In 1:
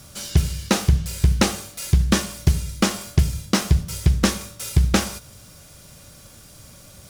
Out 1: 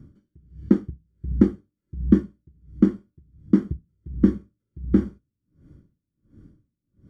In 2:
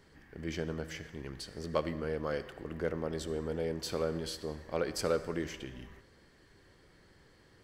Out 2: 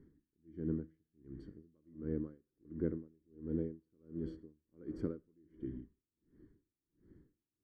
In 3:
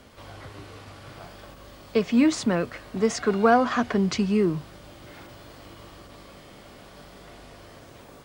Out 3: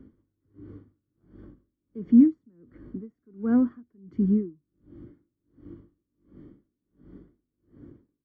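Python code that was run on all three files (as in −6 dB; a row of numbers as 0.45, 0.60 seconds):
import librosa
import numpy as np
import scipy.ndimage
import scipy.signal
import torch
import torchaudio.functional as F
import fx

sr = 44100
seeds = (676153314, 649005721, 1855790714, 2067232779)

y = scipy.signal.savgol_filter(x, 41, 4, mode='constant')
y = fx.low_shelf_res(y, sr, hz=460.0, db=14.0, q=3.0)
y = y * 10.0 ** (-38 * (0.5 - 0.5 * np.cos(2.0 * np.pi * 1.4 * np.arange(len(y)) / sr)) / 20.0)
y = y * 10.0 ** (-13.5 / 20.0)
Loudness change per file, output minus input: −1.0, −6.5, 0.0 LU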